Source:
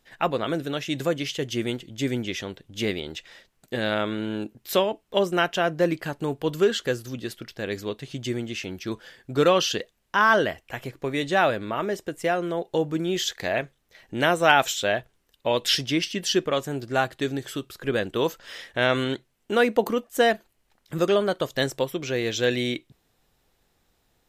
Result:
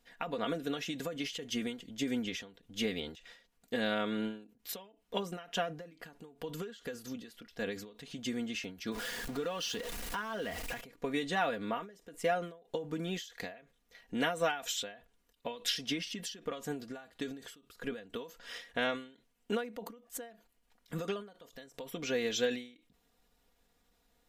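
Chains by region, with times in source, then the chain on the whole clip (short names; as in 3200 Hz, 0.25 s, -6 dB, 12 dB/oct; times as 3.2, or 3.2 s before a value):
8.92–10.81 zero-crossing step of -30.5 dBFS + compressor 4:1, threshold -30 dBFS
whole clip: compressor 2.5:1, threshold -24 dBFS; comb 4.2 ms, depth 71%; ending taper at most 120 dB/s; gain -6.5 dB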